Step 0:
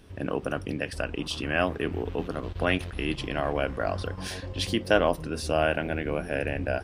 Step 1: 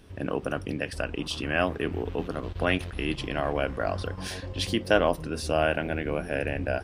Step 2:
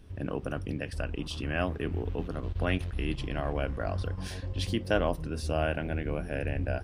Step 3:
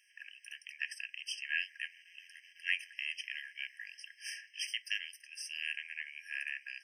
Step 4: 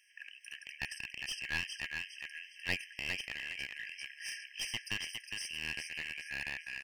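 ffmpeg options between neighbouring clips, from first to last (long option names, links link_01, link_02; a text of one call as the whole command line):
ffmpeg -i in.wav -af anull out.wav
ffmpeg -i in.wav -af "lowshelf=frequency=160:gain=11.5,volume=-6.5dB" out.wav
ffmpeg -i in.wav -af "afftfilt=real='re*eq(mod(floor(b*sr/1024/1600),2),1)':imag='im*eq(mod(floor(b*sr/1024/1600),2),1)':win_size=1024:overlap=0.75,volume=3.5dB" out.wav
ffmpeg -i in.wav -af "aecho=1:1:409|818|1227|1636:0.531|0.191|0.0688|0.0248,aeval=exprs='clip(val(0),-1,0.0141)':channel_layout=same,volume=1dB" out.wav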